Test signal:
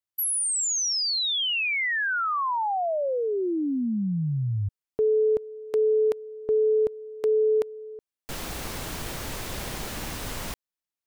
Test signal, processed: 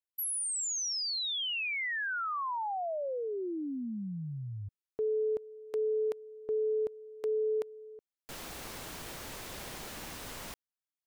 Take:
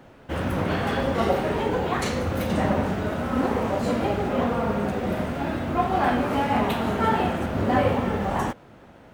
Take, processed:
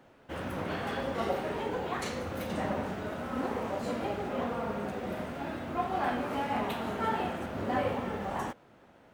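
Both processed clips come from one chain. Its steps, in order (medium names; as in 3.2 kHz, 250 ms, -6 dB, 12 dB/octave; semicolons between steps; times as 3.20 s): bass shelf 170 Hz -7.5 dB; trim -8 dB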